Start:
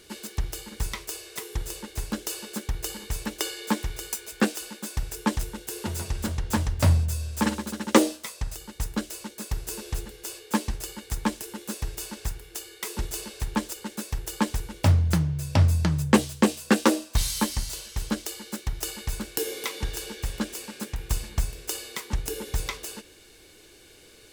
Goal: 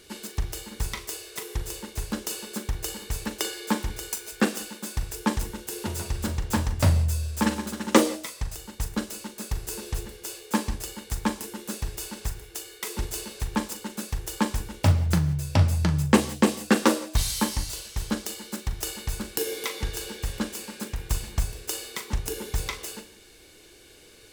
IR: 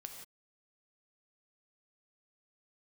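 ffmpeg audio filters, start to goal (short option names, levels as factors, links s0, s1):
-filter_complex "[0:a]asplit=2[s0][s1];[1:a]atrim=start_sample=2205,atrim=end_sample=6615,adelay=40[s2];[s1][s2]afir=irnorm=-1:irlink=0,volume=0.531[s3];[s0][s3]amix=inputs=2:normalize=0"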